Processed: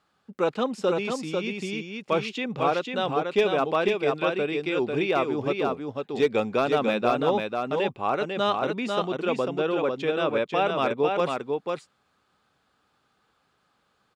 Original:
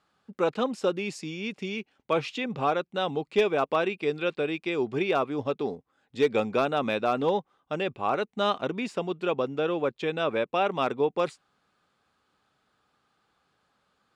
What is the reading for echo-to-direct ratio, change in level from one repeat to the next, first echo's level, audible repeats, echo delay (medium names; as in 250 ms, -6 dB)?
-4.0 dB, no regular repeats, -4.0 dB, 1, 496 ms